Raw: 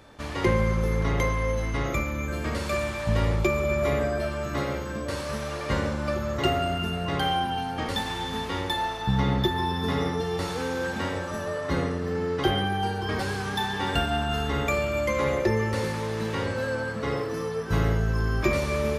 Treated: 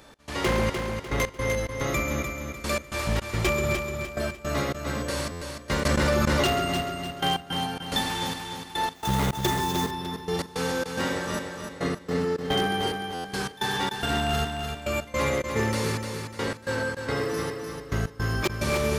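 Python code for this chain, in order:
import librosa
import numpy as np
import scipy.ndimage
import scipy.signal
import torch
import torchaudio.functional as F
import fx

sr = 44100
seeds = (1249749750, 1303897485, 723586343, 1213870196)

y = fx.peak_eq(x, sr, hz=91.0, db=-12.5, octaves=0.3)
y = y + 10.0 ** (-10.0 / 20.0) * np.pad(y, (int(137 * sr / 1000.0), 0))[:len(y)]
y = fx.step_gate(y, sr, bpm=108, pattern='x.xxx...x.x', floor_db=-24.0, edge_ms=4.5)
y = 10.0 ** (-18.0 / 20.0) * (np.abs((y / 10.0 ** (-18.0 / 20.0) + 3.0) % 4.0 - 2.0) - 1.0)
y = fx.high_shelf(y, sr, hz=3900.0, db=8.0)
y = fx.echo_feedback(y, sr, ms=299, feedback_pct=39, wet_db=-6.0)
y = fx.sample_hold(y, sr, seeds[0], rate_hz=10000.0, jitter_pct=20, at=(8.95, 9.91))
y = fx.buffer_glitch(y, sr, at_s=(5.31, 13.14), block=512, repeats=8)
y = fx.env_flatten(y, sr, amount_pct=100, at=(5.85, 6.47))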